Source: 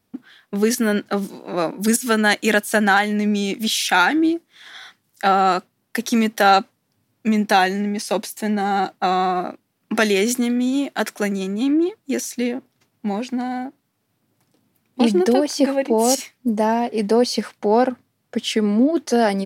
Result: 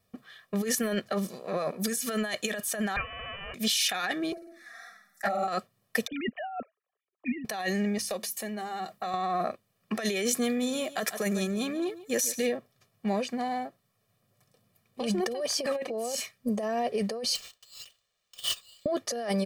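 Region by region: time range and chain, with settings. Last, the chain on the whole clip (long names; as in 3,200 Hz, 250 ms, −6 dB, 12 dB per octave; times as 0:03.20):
0:02.96–0:03.54: each half-wave held at its own peak + first difference + voice inversion scrambler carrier 3,200 Hz
0:04.32–0:05.48: phaser with its sweep stopped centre 640 Hz, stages 8 + flutter between parallel walls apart 8.5 metres, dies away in 0.73 s + flanger swept by the level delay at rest 5.4 ms, full sweep at −15 dBFS
0:06.07–0:07.45: three sine waves on the formant tracks + one half of a high-frequency compander decoder only
0:07.98–0:09.14: high-shelf EQ 10,000 Hz +9.5 dB + downward compressor 4 to 1, threshold −28 dBFS + mains-hum notches 50/100/150/200/250/300/350 Hz
0:10.48–0:12.50: high-shelf EQ 8,700 Hz +7 dB + single-tap delay 143 ms −16 dB
0:17.35–0:18.86: linear-phase brick-wall high-pass 2,600 Hz + sample-rate reduction 12,000 Hz
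whole clip: comb filter 1.7 ms, depth 81%; compressor whose output falls as the input rises −21 dBFS, ratio −1; level −8 dB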